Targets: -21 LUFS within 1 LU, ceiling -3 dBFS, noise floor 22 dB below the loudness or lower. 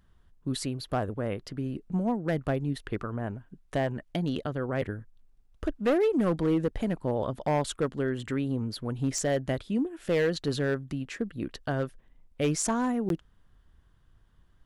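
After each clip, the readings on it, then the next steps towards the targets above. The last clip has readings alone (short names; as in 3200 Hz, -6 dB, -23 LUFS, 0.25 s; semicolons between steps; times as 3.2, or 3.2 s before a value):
clipped 1.1%; flat tops at -20.0 dBFS; dropouts 1; longest dropout 12 ms; loudness -30.5 LUFS; peak -20.0 dBFS; loudness target -21.0 LUFS
-> clip repair -20 dBFS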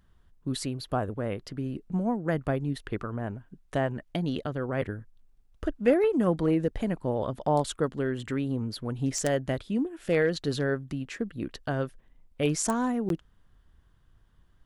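clipped 0.0%; dropouts 1; longest dropout 12 ms
-> interpolate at 13.09, 12 ms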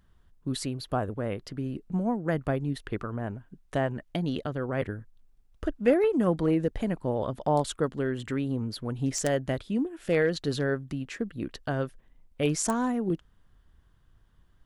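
dropouts 0; loudness -30.0 LUFS; peak -11.0 dBFS; loudness target -21.0 LUFS
-> gain +9 dB; limiter -3 dBFS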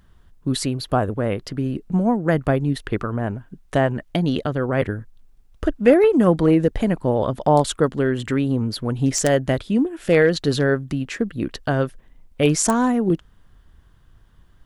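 loudness -21.0 LUFS; peak -3.0 dBFS; noise floor -53 dBFS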